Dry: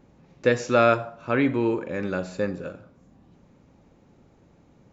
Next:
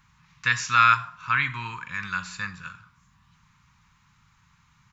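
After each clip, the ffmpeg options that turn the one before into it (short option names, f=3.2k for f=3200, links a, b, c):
-af "firequalizer=gain_entry='entry(150,0);entry(300,-25);entry(600,-28);entry(1000,10)':delay=0.05:min_phase=1,volume=-3.5dB"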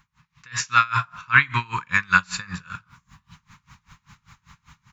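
-af "alimiter=limit=-15dB:level=0:latency=1:release=26,dynaudnorm=f=440:g=3:m=13dB,aeval=exprs='val(0)*pow(10,-27*(0.5-0.5*cos(2*PI*5.1*n/s))/20)':c=same,volume=2dB"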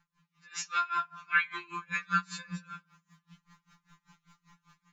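-af "afftfilt=real='re*2.83*eq(mod(b,8),0)':imag='im*2.83*eq(mod(b,8),0)':win_size=2048:overlap=0.75,volume=-8.5dB"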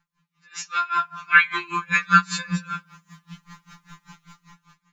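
-af "dynaudnorm=f=390:g=5:m=16dB"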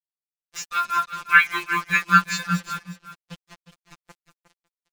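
-af "acrusher=bits=5:mix=0:aa=0.5,aecho=1:1:360:0.251"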